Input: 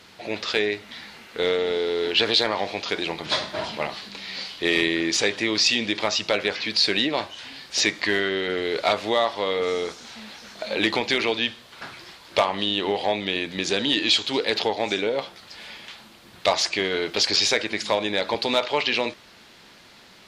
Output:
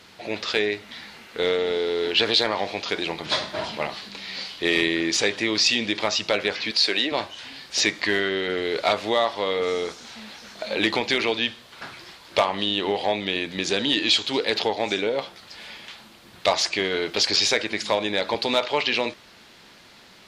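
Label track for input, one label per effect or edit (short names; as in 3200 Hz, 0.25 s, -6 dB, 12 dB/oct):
6.710000	7.120000	HPF 320 Hz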